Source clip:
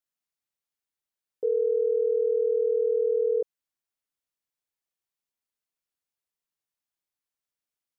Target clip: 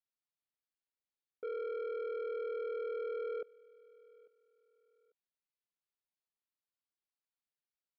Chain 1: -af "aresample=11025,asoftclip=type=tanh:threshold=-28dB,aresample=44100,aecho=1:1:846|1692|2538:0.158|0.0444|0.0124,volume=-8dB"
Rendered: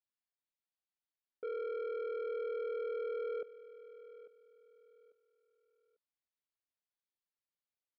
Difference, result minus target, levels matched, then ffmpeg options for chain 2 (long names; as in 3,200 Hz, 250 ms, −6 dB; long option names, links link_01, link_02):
echo-to-direct +7.5 dB
-af "aresample=11025,asoftclip=type=tanh:threshold=-28dB,aresample=44100,aecho=1:1:846|1692:0.0668|0.0187,volume=-8dB"